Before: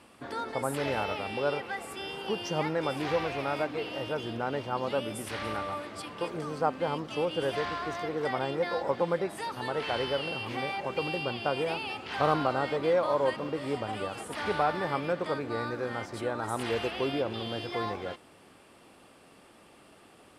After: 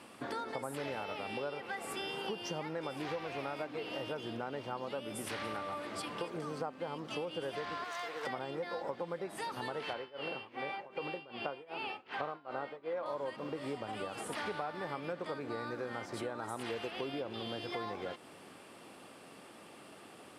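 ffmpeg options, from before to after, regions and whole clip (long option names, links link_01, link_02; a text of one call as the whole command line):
ffmpeg -i in.wav -filter_complex "[0:a]asettb=1/sr,asplit=3[link_01][link_02][link_03];[link_01]atrim=end=7.844[link_04];[link_02]atrim=start=7.84:end=8.27,asetpts=PTS-STARTPTS,afade=type=in:duration=0.004:curve=qsin,afade=type=out:start_time=0.426:duration=0.004:curve=qsin,highpass=870,aeval=exprs='clip(val(0),-1,0.0112)':channel_layout=same[link_05];[link_03]atrim=start=8.266[link_06];[link_04][link_05]acrossfade=duration=0.004:curve1=hsin:curve2=qsin[link_07];[link_07][link_06]acrossfade=duration=0.004:curve1=qsin:curve2=hsin,asettb=1/sr,asplit=3[link_08][link_09][link_10];[link_08]atrim=end=9.934[link_11];[link_09]atrim=start=9.93:end=13.06,asetpts=PTS-STARTPTS,afade=type=in:duration=0.004:curve=qsin,afade=type=out:start_time=3.126:duration=0.004:curve=qsin,bass=frequency=250:gain=-7,treble=frequency=4000:gain=-13,asplit=2[link_12][link_13];[link_13]adelay=21,volume=-14dB[link_14];[link_12][link_14]amix=inputs=2:normalize=0,atrim=end_sample=138033,tremolo=f=2.6:d=0.94[link_15];[link_10]atrim=start=13.056[link_16];[link_11][link_15]acrossfade=duration=0.004:curve1=hsin:curve2=qsin[link_17];[link_17][link_16]acrossfade=duration=0.004:curve1=qsin:curve2=hsin,acompressor=threshold=-39dB:ratio=6,highpass=120,volume=2.5dB" out.wav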